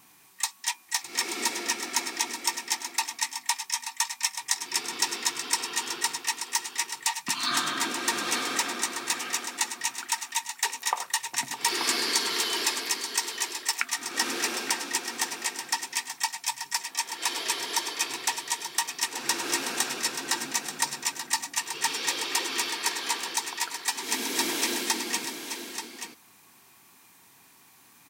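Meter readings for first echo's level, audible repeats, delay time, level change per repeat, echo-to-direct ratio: −15.0 dB, 2, 610 ms, repeats not evenly spaced, −8.0 dB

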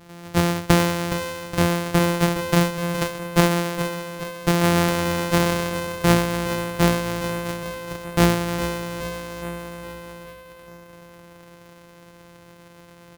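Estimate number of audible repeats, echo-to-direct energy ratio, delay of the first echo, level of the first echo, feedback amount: 5, −8.5 dB, 416 ms, −10.0 dB, 55%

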